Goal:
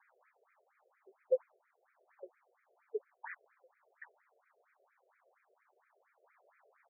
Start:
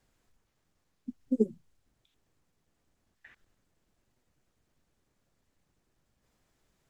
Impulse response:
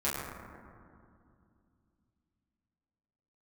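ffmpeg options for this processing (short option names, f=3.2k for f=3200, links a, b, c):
-filter_complex "[0:a]asplit=2[a][b];[b]adelay=772,lowpass=f=1.9k:p=1,volume=-8dB,asplit=2[c][d];[d]adelay=772,lowpass=f=1.9k:p=1,volume=0.19,asplit=2[e][f];[f]adelay=772,lowpass=f=1.9k:p=1,volume=0.19[g];[a][c][e][g]amix=inputs=4:normalize=0,asplit=2[h][i];[i]asetrate=22050,aresample=44100,atempo=2,volume=-8dB[j];[h][j]amix=inputs=2:normalize=0,afftfilt=real='re*between(b*sr/1024,490*pow(1800/490,0.5+0.5*sin(2*PI*4.3*pts/sr))/1.41,490*pow(1800/490,0.5+0.5*sin(2*PI*4.3*pts/sr))*1.41)':imag='im*between(b*sr/1024,490*pow(1800/490,0.5+0.5*sin(2*PI*4.3*pts/sr))/1.41,490*pow(1800/490,0.5+0.5*sin(2*PI*4.3*pts/sr))*1.41)':win_size=1024:overlap=0.75,volume=14dB"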